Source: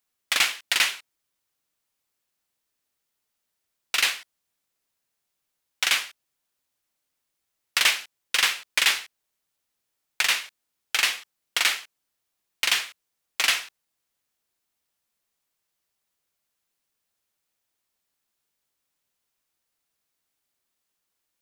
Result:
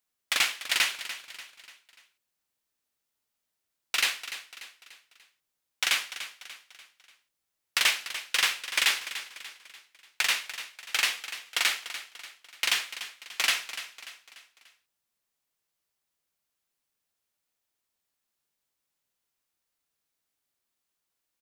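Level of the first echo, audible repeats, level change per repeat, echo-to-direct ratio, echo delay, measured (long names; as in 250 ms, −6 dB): −12.5 dB, 4, −7.0 dB, −11.5 dB, 293 ms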